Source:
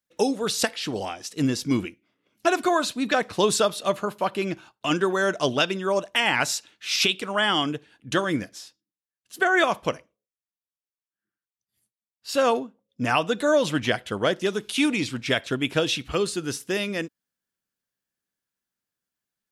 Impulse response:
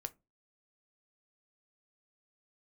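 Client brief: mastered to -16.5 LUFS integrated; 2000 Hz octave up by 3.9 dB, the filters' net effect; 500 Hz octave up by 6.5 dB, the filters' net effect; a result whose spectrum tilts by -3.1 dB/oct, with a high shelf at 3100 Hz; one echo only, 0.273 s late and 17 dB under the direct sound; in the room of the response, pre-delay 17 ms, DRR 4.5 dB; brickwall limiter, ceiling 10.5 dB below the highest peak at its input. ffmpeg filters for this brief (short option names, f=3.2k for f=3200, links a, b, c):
-filter_complex "[0:a]equalizer=f=500:t=o:g=8,equalizer=f=2k:t=o:g=7,highshelf=f=3.1k:g=-6.5,alimiter=limit=-14.5dB:level=0:latency=1,aecho=1:1:273:0.141,asplit=2[a][b];[1:a]atrim=start_sample=2205,adelay=17[c];[b][c]afir=irnorm=-1:irlink=0,volume=-2dB[d];[a][d]amix=inputs=2:normalize=0,volume=7.5dB"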